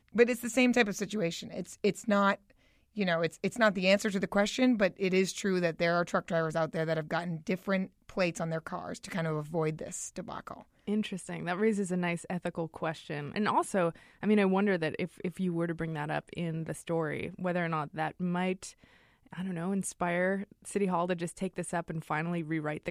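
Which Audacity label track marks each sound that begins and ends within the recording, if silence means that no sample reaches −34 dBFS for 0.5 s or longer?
2.970000	18.670000	sound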